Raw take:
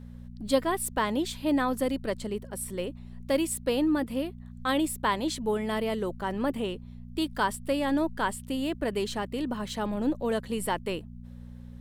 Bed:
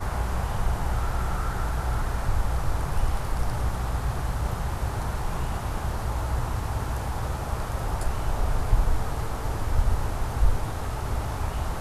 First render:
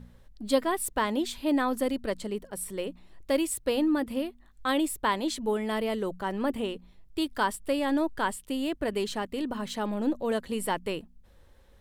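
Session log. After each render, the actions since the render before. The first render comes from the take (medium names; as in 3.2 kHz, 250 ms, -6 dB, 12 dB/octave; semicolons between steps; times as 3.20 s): de-hum 60 Hz, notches 4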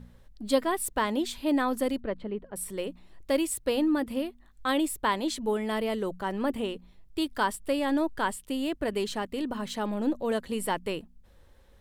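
2.00–2.56 s: distance through air 440 m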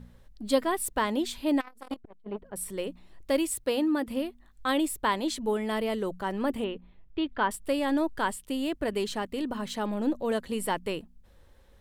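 1.60–2.52 s: transformer saturation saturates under 840 Hz; 3.64–4.08 s: high-pass 160 Hz 6 dB/octave; 6.64–7.51 s: low-pass 3.2 kHz 24 dB/octave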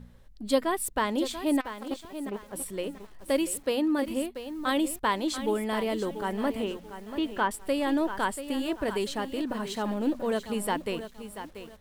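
bit-crushed delay 686 ms, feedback 35%, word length 8-bit, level -10.5 dB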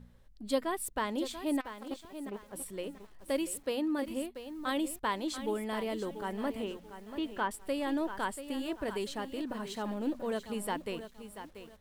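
trim -6 dB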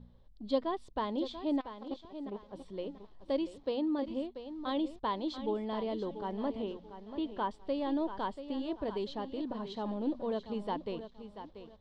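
low-pass 4.2 kHz 24 dB/octave; high-order bell 1.9 kHz -10 dB 1.3 oct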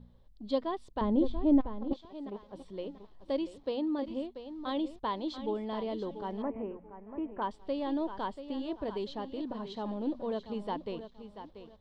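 1.01–1.93 s: tilt EQ -4.5 dB/octave; 6.42–7.42 s: elliptic low-pass 2.4 kHz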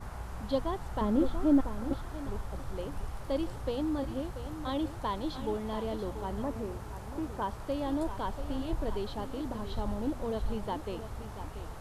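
add bed -13.5 dB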